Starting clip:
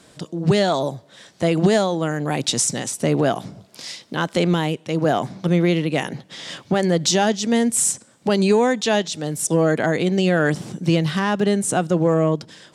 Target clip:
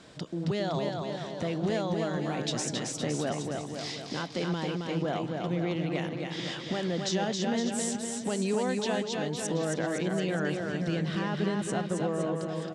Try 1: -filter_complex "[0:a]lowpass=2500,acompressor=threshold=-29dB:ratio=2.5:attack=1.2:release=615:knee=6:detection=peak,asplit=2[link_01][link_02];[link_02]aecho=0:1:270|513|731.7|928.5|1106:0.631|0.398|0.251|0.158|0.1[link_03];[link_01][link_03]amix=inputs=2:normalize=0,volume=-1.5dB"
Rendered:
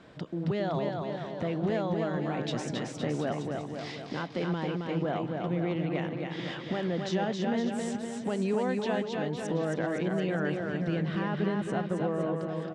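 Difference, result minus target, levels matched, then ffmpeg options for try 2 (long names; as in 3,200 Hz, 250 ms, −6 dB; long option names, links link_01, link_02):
8,000 Hz band −11.5 dB
-filter_complex "[0:a]lowpass=5700,acompressor=threshold=-29dB:ratio=2.5:attack=1.2:release=615:knee=6:detection=peak,asplit=2[link_01][link_02];[link_02]aecho=0:1:270|513|731.7|928.5|1106:0.631|0.398|0.251|0.158|0.1[link_03];[link_01][link_03]amix=inputs=2:normalize=0,volume=-1.5dB"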